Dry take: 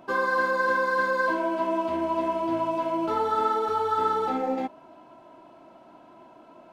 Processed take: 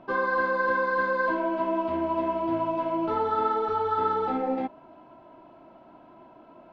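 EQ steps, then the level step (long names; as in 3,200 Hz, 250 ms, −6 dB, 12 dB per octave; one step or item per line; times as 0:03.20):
high-frequency loss of the air 260 metres
low-shelf EQ 100 Hz +6.5 dB
high-shelf EQ 5,800 Hz +5 dB
0.0 dB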